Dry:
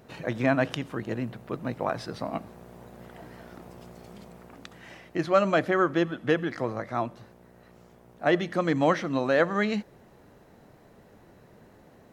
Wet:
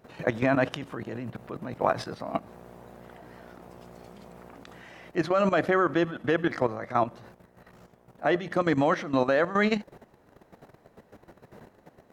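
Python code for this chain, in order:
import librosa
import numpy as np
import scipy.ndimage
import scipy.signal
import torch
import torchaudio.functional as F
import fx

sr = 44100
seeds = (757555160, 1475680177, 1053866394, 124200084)

y = fx.peak_eq(x, sr, hz=910.0, db=4.0, octaves=2.8)
y = fx.level_steps(y, sr, step_db=13)
y = y * 10.0 ** (4.0 / 20.0)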